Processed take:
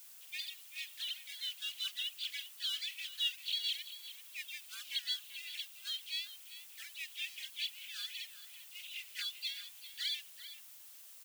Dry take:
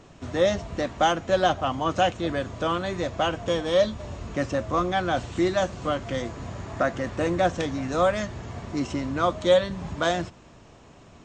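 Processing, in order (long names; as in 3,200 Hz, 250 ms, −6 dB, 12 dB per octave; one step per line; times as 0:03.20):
three sine waves on the formant tracks
leveller curve on the samples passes 1
pitch-shifted copies added +3 semitones −7 dB, +5 semitones −6 dB
downward compressor, threshold −20 dBFS, peak gain reduction 13.5 dB
Butterworth high-pass 2,900 Hz 36 dB per octave
slap from a distant wall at 67 metres, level −10 dB
background noise blue −62 dBFS
level +7 dB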